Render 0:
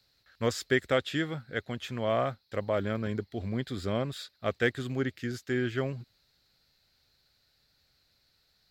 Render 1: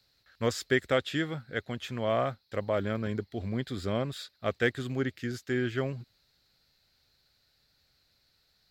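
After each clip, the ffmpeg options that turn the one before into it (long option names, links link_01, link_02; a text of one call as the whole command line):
ffmpeg -i in.wav -af anull out.wav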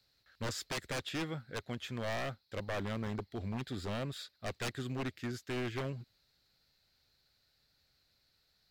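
ffmpeg -i in.wav -af "aeval=exprs='0.0447*(abs(mod(val(0)/0.0447+3,4)-2)-1)':channel_layout=same,volume=-4dB" out.wav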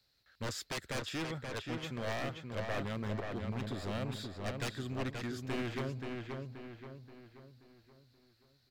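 ffmpeg -i in.wav -filter_complex "[0:a]asplit=2[link_01][link_02];[link_02]adelay=529,lowpass=frequency=3500:poles=1,volume=-4dB,asplit=2[link_03][link_04];[link_04]adelay=529,lowpass=frequency=3500:poles=1,volume=0.46,asplit=2[link_05][link_06];[link_06]adelay=529,lowpass=frequency=3500:poles=1,volume=0.46,asplit=2[link_07][link_08];[link_08]adelay=529,lowpass=frequency=3500:poles=1,volume=0.46,asplit=2[link_09][link_10];[link_10]adelay=529,lowpass=frequency=3500:poles=1,volume=0.46,asplit=2[link_11][link_12];[link_12]adelay=529,lowpass=frequency=3500:poles=1,volume=0.46[link_13];[link_01][link_03][link_05][link_07][link_09][link_11][link_13]amix=inputs=7:normalize=0,volume=-1dB" out.wav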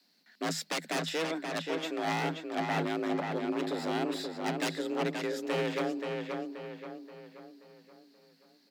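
ffmpeg -i in.wav -af "afreqshift=160,volume=5.5dB" out.wav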